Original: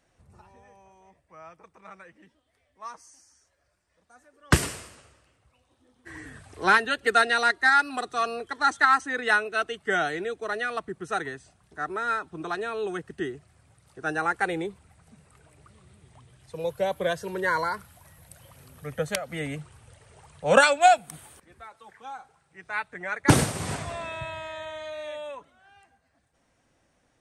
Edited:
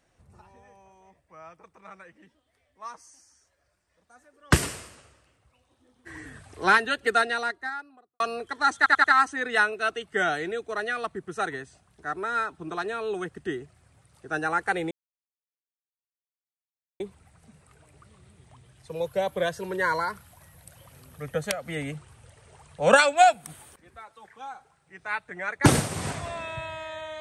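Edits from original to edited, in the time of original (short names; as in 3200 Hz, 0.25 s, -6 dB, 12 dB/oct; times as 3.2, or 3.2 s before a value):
6.9–8.2 studio fade out
8.77 stutter 0.09 s, 4 plays
14.64 insert silence 2.09 s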